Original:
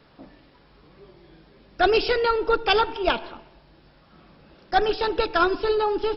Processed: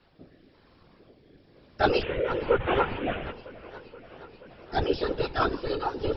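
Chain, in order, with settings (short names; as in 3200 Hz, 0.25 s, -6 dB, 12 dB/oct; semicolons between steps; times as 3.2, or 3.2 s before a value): 2.01–3.31 delta modulation 16 kbps, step -23 dBFS; rotary speaker horn 1 Hz, later 6.7 Hz, at 3.64; chorus voices 4, 0.81 Hz, delay 13 ms, depth 2.4 ms; whisperiser; warbling echo 0.477 s, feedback 74%, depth 139 cents, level -19.5 dB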